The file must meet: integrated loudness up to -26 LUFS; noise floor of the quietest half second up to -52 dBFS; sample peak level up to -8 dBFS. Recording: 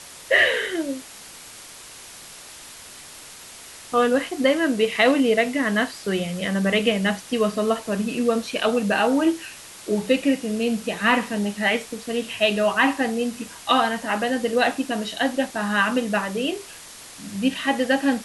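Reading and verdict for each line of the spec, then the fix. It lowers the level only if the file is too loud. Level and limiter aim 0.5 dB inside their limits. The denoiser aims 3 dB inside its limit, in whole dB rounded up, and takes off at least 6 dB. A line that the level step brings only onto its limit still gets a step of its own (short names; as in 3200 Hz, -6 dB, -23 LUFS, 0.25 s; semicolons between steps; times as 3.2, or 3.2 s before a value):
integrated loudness -22.0 LUFS: fail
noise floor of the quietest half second -42 dBFS: fail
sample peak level -5.5 dBFS: fail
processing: denoiser 9 dB, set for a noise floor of -42 dBFS; gain -4.5 dB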